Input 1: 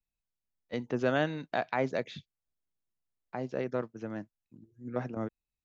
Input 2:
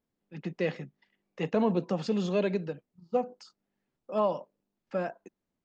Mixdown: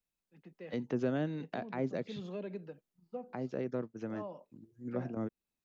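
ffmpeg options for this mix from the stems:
-filter_complex "[0:a]volume=1.19[s0];[1:a]lowpass=f=2800:p=1,volume=0.299,afade=t=in:st=1.85:d=0.42:silence=0.446684[s1];[s0][s1]amix=inputs=2:normalize=0,lowshelf=f=91:g=-10,acrossover=split=400[s2][s3];[s3]acompressor=threshold=0.00562:ratio=3[s4];[s2][s4]amix=inputs=2:normalize=0"

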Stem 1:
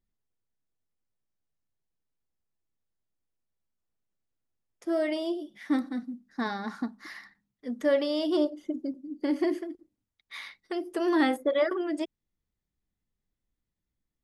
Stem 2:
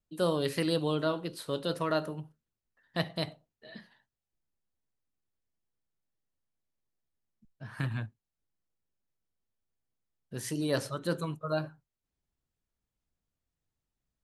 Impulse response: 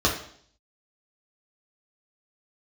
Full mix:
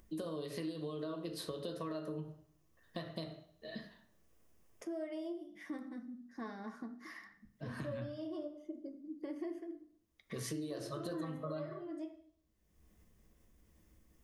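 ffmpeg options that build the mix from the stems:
-filter_complex "[0:a]equalizer=f=4100:w=3:g=-12,bandreject=f=60:t=h:w=6,bandreject=f=120:t=h:w=6,bandreject=f=180:t=h:w=6,bandreject=f=240:t=h:w=6,bandreject=f=300:t=h:w=6,acompressor=mode=upward:threshold=0.0398:ratio=2.5,volume=0.188,asplit=2[s0][s1];[s1]volume=0.112[s2];[1:a]alimiter=level_in=1.12:limit=0.0631:level=0:latency=1:release=268,volume=0.891,acompressor=threshold=0.0141:ratio=6,volume=0.75,asplit=3[s3][s4][s5];[s4]volume=0.188[s6];[s5]apad=whole_len=627627[s7];[s0][s7]sidechaincompress=threshold=0.002:ratio=8:attack=39:release=914[s8];[2:a]atrim=start_sample=2205[s9];[s2][s6]amix=inputs=2:normalize=0[s10];[s10][s9]afir=irnorm=-1:irlink=0[s11];[s8][s3][s11]amix=inputs=3:normalize=0,acompressor=threshold=0.0126:ratio=4"

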